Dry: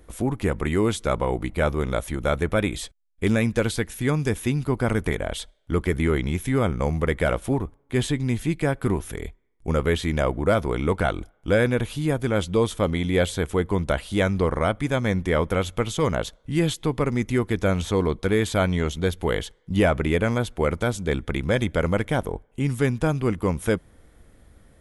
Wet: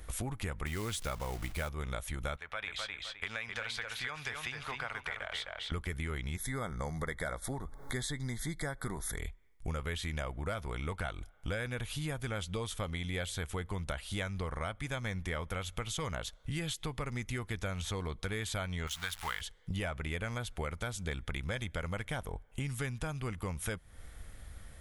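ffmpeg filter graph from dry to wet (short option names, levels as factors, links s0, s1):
-filter_complex "[0:a]asettb=1/sr,asplit=3[s0][s1][s2];[s0]atrim=end=0.664[s3];[s1]atrim=start=0.66:end=1.69,asetpts=PTS-STARTPTS,afade=t=in:d=0.004:c=qsin,afade=t=out:st=1.026:d=0.004:c=qsin,aeval=exprs='val(0)+0.5*0.0178*sgn(val(0))':c=same,acrusher=bits=5:mode=log:mix=0:aa=0.000001[s4];[s2]atrim=start=1.686[s5];[s3][s4]acrossfade=d=0.004:c1=hsin:c2=qsin[s6];[s6][s5]acrossfade=d=0.004:c1=qsin:c2=hsin,asettb=1/sr,asplit=3[s7][s8][s9];[s7]atrim=end=2.364[s10];[s8]atrim=start=2.36:end=5.72,asetpts=PTS-STARTPTS,afade=t=in:d=0.004:c=qsin,afade=t=out:st=3.356:d=0.004:c=qsin,acrossover=split=590 4900:gain=0.1 1 0.112[s11][s12][s13];[s11][s12][s13]amix=inputs=3:normalize=0,acompressor=threshold=0.0126:ratio=1.5:attack=3.2:release=140:knee=1:detection=peak,asplit=2[s14][s15];[s15]adelay=259,lowpass=f=4700:p=1,volume=0.562,asplit=2[s16][s17];[s17]adelay=259,lowpass=f=4700:p=1,volume=0.21,asplit=2[s18][s19];[s19]adelay=259,lowpass=f=4700:p=1,volume=0.21[s20];[s14][s16][s18][s20]amix=inputs=4:normalize=0,atrim=end_sample=148176[s21];[s9]atrim=start=5.716[s22];[s10][s21]acrossfade=d=0.004:c1=hsin:c2=qsin[s23];[s23][s22]acrossfade=d=0.004:c1=qsin:c2=hsin,asettb=1/sr,asplit=3[s24][s25][s26];[s24]atrim=end=6.364[s27];[s25]atrim=start=6.36:end=9.18,asetpts=PTS-STARTPTS,afade=t=in:d=0.004:c=qsin,afade=t=out:st=2.816:d=0.004:c=qsin,equalizer=f=88:t=o:w=0.52:g=-15,acompressor=mode=upward:threshold=0.0447:ratio=2.5:attack=3.2:release=140:knee=2.83:detection=peak,asuperstop=centerf=2700:order=12:qfactor=2.3[s28];[s26]atrim=start=9.176[s29];[s27][s28]acrossfade=d=0.004:c1=hsin:c2=qsin[s30];[s30][s29]acrossfade=d=0.004:c1=qsin:c2=hsin,asettb=1/sr,asplit=3[s31][s32][s33];[s31]atrim=end=18.874[s34];[s32]atrim=start=18.87:end=19.41,asetpts=PTS-STARTPTS,afade=t=in:d=0.004:c=qsin,afade=t=out:st=0.536:d=0.004:c=qsin,aeval=exprs='val(0)+0.5*0.0224*sgn(val(0))':c=same,lowshelf=f=710:t=q:w=1.5:g=-13.5,acrusher=bits=6:mode=log:mix=0:aa=0.000001[s35];[s33]atrim=start=19.406[s36];[s34][s35]acrossfade=d=0.004:c1=hsin:c2=qsin[s37];[s37][s36]acrossfade=d=0.004:c1=qsin:c2=hsin,equalizer=f=320:t=o:w=2.3:g=-13,bandreject=f=1000:w=20,acompressor=threshold=0.00891:ratio=6,volume=2"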